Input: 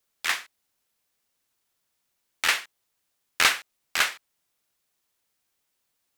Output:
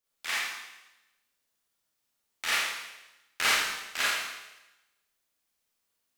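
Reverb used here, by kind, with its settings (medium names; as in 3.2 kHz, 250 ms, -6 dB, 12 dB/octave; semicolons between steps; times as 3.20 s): Schroeder reverb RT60 1 s, combs from 27 ms, DRR -7 dB; trim -10.5 dB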